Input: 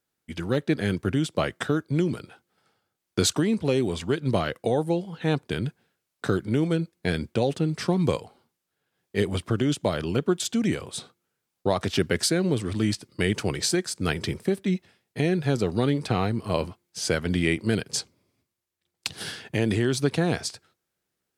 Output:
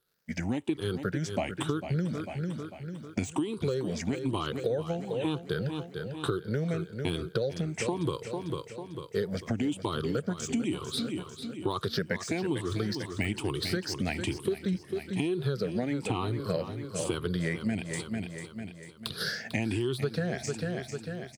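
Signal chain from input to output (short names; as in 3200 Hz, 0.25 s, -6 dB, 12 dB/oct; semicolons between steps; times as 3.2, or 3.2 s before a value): moving spectral ripple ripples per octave 0.62, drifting +1.1 Hz, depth 18 dB; de-esser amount 55%; feedback echo 0.447 s, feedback 48%, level -11.5 dB; compressor, threshold -25 dBFS, peak gain reduction 13 dB; crackle 230/s -59 dBFS; gain -2 dB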